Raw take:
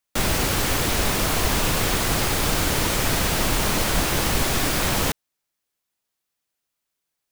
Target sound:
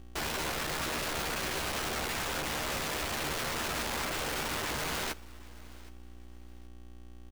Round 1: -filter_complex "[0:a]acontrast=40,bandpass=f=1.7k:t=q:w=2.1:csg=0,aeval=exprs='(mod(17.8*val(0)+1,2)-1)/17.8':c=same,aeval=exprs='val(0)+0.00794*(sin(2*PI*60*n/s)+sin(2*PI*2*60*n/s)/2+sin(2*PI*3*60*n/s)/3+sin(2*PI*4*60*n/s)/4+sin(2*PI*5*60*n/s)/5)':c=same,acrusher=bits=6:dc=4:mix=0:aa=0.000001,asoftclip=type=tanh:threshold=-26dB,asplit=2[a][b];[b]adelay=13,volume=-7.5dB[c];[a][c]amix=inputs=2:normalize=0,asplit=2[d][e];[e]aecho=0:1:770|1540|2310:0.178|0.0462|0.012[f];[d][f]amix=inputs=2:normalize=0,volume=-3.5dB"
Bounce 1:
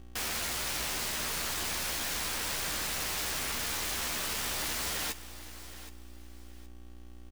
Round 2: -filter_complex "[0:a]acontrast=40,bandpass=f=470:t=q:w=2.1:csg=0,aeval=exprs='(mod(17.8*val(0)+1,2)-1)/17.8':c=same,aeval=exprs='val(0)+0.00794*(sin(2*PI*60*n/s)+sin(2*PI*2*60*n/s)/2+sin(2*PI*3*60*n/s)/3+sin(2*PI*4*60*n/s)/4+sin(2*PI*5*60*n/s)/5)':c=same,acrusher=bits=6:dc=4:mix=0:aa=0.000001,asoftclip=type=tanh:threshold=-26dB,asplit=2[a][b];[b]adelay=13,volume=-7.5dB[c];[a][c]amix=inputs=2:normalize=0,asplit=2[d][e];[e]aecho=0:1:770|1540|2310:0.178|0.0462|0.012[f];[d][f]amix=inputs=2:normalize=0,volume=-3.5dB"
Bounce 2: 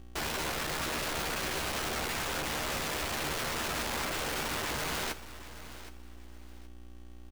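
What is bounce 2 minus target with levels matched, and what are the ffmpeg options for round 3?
echo-to-direct +7 dB
-filter_complex "[0:a]acontrast=40,bandpass=f=470:t=q:w=2.1:csg=0,aeval=exprs='(mod(17.8*val(0)+1,2)-1)/17.8':c=same,aeval=exprs='val(0)+0.00794*(sin(2*PI*60*n/s)+sin(2*PI*2*60*n/s)/2+sin(2*PI*3*60*n/s)/3+sin(2*PI*4*60*n/s)/4+sin(2*PI*5*60*n/s)/5)':c=same,acrusher=bits=6:dc=4:mix=0:aa=0.000001,asoftclip=type=tanh:threshold=-26dB,asplit=2[a][b];[b]adelay=13,volume=-7.5dB[c];[a][c]amix=inputs=2:normalize=0,asplit=2[d][e];[e]aecho=0:1:770|1540:0.0794|0.0207[f];[d][f]amix=inputs=2:normalize=0,volume=-3.5dB"

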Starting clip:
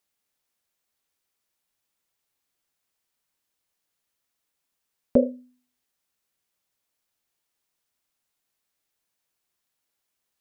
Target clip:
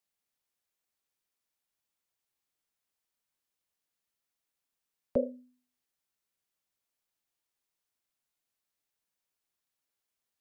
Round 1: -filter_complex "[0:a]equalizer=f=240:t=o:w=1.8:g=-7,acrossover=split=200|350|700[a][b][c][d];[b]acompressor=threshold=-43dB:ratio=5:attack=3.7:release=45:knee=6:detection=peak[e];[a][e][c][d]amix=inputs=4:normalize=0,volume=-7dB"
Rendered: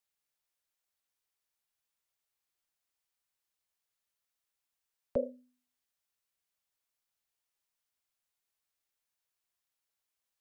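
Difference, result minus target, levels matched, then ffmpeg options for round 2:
250 Hz band -3.0 dB
-filter_complex "[0:a]acrossover=split=200|350|700[a][b][c][d];[b]acompressor=threshold=-43dB:ratio=5:attack=3.7:release=45:knee=6:detection=peak[e];[a][e][c][d]amix=inputs=4:normalize=0,volume=-7dB"

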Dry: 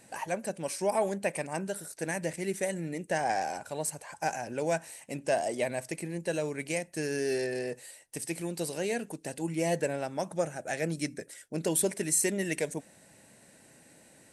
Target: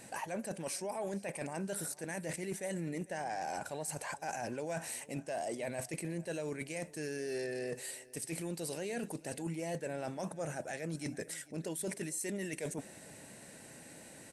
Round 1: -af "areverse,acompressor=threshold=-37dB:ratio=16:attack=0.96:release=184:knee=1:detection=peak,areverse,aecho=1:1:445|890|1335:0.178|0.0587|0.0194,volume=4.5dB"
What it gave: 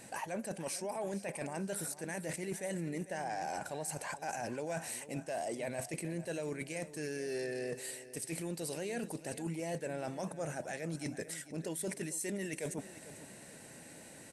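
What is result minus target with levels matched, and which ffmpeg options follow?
echo-to-direct +6.5 dB
-af "areverse,acompressor=threshold=-37dB:ratio=16:attack=0.96:release=184:knee=1:detection=peak,areverse,aecho=1:1:445|890:0.0841|0.0278,volume=4.5dB"

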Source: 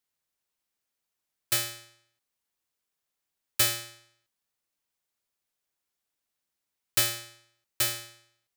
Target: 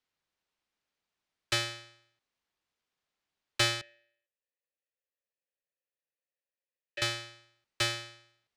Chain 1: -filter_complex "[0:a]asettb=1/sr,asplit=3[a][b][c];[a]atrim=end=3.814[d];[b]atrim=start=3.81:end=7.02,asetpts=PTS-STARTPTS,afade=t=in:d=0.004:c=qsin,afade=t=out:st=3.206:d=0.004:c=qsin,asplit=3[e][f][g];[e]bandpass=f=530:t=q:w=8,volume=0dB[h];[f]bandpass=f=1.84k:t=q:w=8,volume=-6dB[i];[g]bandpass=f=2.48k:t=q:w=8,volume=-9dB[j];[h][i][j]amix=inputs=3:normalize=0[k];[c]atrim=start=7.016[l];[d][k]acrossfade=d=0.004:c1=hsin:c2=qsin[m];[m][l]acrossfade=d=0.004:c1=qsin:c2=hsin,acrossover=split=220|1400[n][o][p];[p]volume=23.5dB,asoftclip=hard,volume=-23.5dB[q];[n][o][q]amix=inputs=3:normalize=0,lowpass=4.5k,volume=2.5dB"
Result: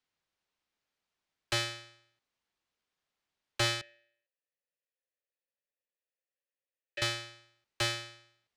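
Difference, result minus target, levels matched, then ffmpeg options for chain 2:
overloaded stage: distortion +15 dB
-filter_complex "[0:a]asettb=1/sr,asplit=3[a][b][c];[a]atrim=end=3.814[d];[b]atrim=start=3.81:end=7.02,asetpts=PTS-STARTPTS,afade=t=in:d=0.004:c=qsin,afade=t=out:st=3.206:d=0.004:c=qsin,asplit=3[e][f][g];[e]bandpass=f=530:t=q:w=8,volume=0dB[h];[f]bandpass=f=1.84k:t=q:w=8,volume=-6dB[i];[g]bandpass=f=2.48k:t=q:w=8,volume=-9dB[j];[h][i][j]amix=inputs=3:normalize=0[k];[c]atrim=start=7.016[l];[d][k]acrossfade=d=0.004:c1=hsin:c2=qsin[m];[m][l]acrossfade=d=0.004:c1=qsin:c2=hsin,acrossover=split=220|1400[n][o][p];[p]volume=14dB,asoftclip=hard,volume=-14dB[q];[n][o][q]amix=inputs=3:normalize=0,lowpass=4.5k,volume=2.5dB"

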